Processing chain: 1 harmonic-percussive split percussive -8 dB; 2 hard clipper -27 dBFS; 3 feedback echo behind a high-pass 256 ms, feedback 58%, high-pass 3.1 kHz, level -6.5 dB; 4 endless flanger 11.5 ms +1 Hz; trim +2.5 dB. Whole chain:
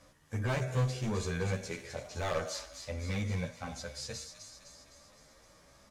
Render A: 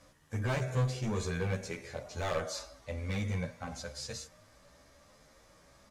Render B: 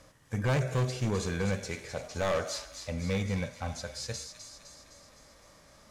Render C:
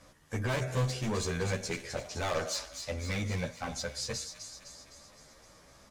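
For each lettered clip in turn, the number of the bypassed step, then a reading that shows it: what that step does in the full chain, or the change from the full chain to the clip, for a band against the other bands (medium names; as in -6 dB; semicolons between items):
3, momentary loudness spread change -5 LU; 4, crest factor change -6.5 dB; 1, 8 kHz band +3.0 dB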